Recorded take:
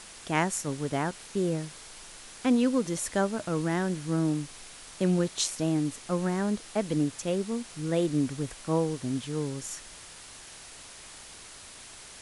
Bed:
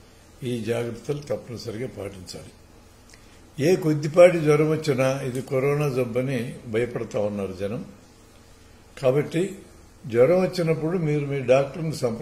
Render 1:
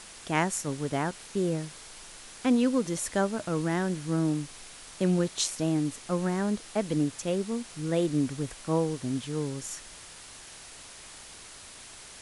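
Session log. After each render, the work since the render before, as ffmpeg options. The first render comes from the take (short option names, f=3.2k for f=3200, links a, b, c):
-af anull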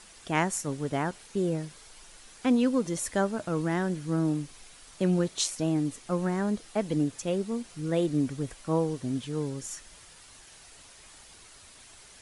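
-af "afftdn=nr=7:nf=-47"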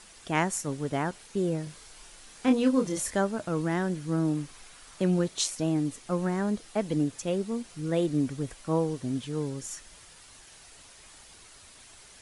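-filter_complex "[0:a]asettb=1/sr,asplit=3[a][b][c];[a]atrim=end=1.644[d];[b]atrim=start=1.64:end=3.16,asetpts=PTS-STARTPTS,afade=t=in:d=0.004:c=qsin,afade=t=out:st=1.516:d=0.004:c=qsin,asplit=2[e][f];[f]adelay=27,volume=-5dB[g];[e][g]amix=inputs=2:normalize=0,atrim=end_sample=67032[h];[c]atrim=start=3.156[i];[d][h]acrossfade=d=0.004:c1=hsin:c2=qsin[j];[j][i]acrossfade=d=0.004:c1=qsin:c2=hsin,asettb=1/sr,asplit=3[k][l][m];[k]atrim=end=4.374[n];[l]atrim=start=4.37:end=5.02,asetpts=PTS-STARTPTS,afade=t=in:d=0.004:c=qsin,afade=t=out:st=0.646:d=0.004:c=qsin,equalizer=f=1.3k:w=1:g=4.5[o];[m]atrim=start=5.016[p];[n][o]acrossfade=d=0.004:c1=hsin:c2=qsin[q];[q][p]acrossfade=d=0.004:c1=qsin:c2=hsin"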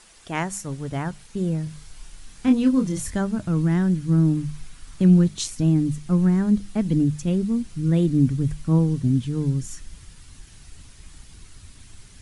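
-af "bandreject=f=50:t=h:w=6,bandreject=f=100:t=h:w=6,bandreject=f=150:t=h:w=6,bandreject=f=200:t=h:w=6,asubboost=boost=10:cutoff=180"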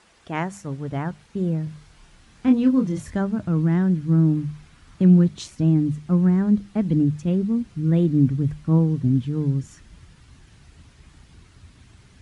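-af "highpass=58,aemphasis=mode=reproduction:type=75fm"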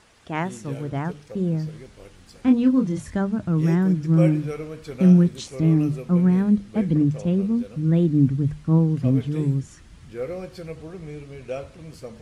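-filter_complex "[1:a]volume=-13dB[a];[0:a][a]amix=inputs=2:normalize=0"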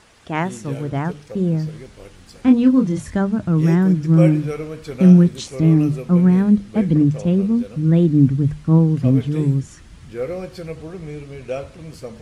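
-af "volume=4.5dB"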